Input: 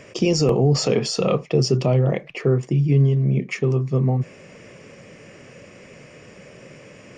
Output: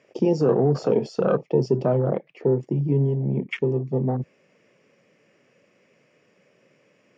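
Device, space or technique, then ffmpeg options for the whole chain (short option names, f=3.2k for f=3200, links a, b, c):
over-cleaned archive recording: -af "highpass=180,lowpass=6.2k,afwtdn=0.0447"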